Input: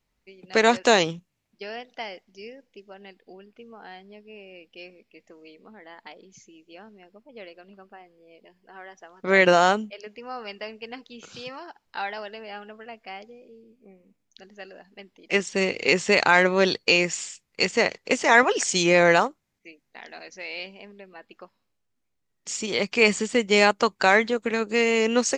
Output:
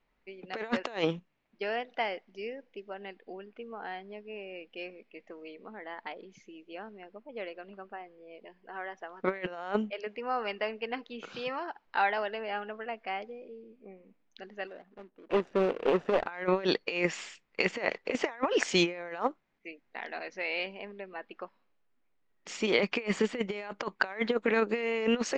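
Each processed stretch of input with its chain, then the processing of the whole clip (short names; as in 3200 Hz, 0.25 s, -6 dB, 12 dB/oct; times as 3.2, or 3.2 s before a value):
14.67–16.27 median filter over 41 samples + low shelf 350 Hz -5 dB
whole clip: LPF 2500 Hz 12 dB/oct; bell 89 Hz -14 dB 1.8 oct; negative-ratio compressor -27 dBFS, ratio -0.5; gain -1 dB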